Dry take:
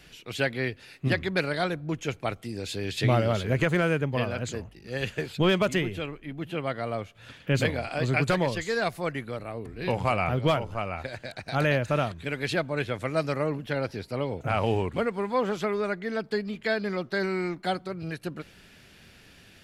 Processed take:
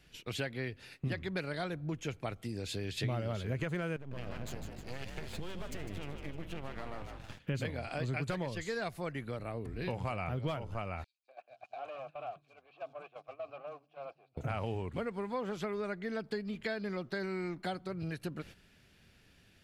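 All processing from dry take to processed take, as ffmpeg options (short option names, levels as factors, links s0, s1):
-filter_complex "[0:a]asettb=1/sr,asplit=3[s0][s1][s2];[s0]atrim=end=3.964[s3];[s1]atrim=start=3.96:end=7.39,asetpts=PTS-STARTPTS,afade=t=in:d=0.004:c=qsin,afade=t=out:st=3.426:d=0.004:c=qsin,acompressor=threshold=0.0251:ratio=6:attack=3.2:release=140:knee=1:detection=peak,aeval=exprs='max(val(0),0)':c=same,asplit=8[s4][s5][s6][s7][s8][s9][s10][s11];[s5]adelay=153,afreqshift=46,volume=0.376[s12];[s6]adelay=306,afreqshift=92,volume=0.214[s13];[s7]adelay=459,afreqshift=138,volume=0.122[s14];[s8]adelay=612,afreqshift=184,volume=0.07[s15];[s9]adelay=765,afreqshift=230,volume=0.0398[s16];[s10]adelay=918,afreqshift=276,volume=0.0226[s17];[s11]adelay=1071,afreqshift=322,volume=0.0129[s18];[s4][s12][s13][s14][s15][s16][s17][s18]amix=inputs=8:normalize=0,atrim=end_sample=151263[s19];[s2]atrim=start=7.386[s20];[s3][s19]acrossfade=d=0.004:c1=hsin:c2=qsin[s21];[s21][s20]acrossfade=d=0.004:c1=qsin:c2=hsin,asettb=1/sr,asplit=3[s22][s23][s24];[s22]atrim=end=11.044[s25];[s23]atrim=start=11.04:end=14.37,asetpts=PTS-STARTPTS,afade=t=in:d=0.004:c=qsin,afade=t=out:st=3.326:d=0.004:c=qsin,volume=29.9,asoftclip=hard,volume=0.0335,asplit=3[s26][s27][s28];[s26]bandpass=f=730:t=q:w=8,volume=1[s29];[s27]bandpass=f=1090:t=q:w=8,volume=0.501[s30];[s28]bandpass=f=2440:t=q:w=8,volume=0.355[s31];[s29][s30][s31]amix=inputs=3:normalize=0,acrossover=split=230|4600[s32][s33][s34];[s33]adelay=240[s35];[s32]adelay=460[s36];[s36][s35][s34]amix=inputs=3:normalize=0,atrim=end_sample=146853[s37];[s24]atrim=start=14.366[s38];[s25][s37]acrossfade=d=0.004:c1=hsin:c2=qsin[s39];[s39][s38]acrossfade=d=0.004:c1=qsin:c2=hsin,agate=range=0.251:threshold=0.00447:ratio=16:detection=peak,lowshelf=f=170:g=5.5,acompressor=threshold=0.0141:ratio=3"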